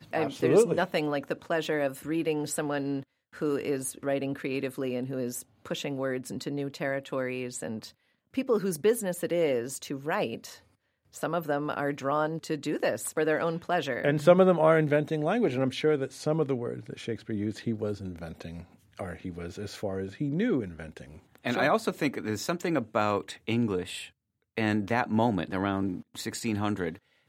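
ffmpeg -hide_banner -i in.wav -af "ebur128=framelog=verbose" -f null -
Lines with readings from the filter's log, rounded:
Integrated loudness:
  I:         -29.3 LUFS
  Threshold: -39.7 LUFS
Loudness range:
  LRA:         8.9 LU
  Threshold: -49.9 LUFS
  LRA low:   -34.2 LUFS
  LRA high:  -25.3 LUFS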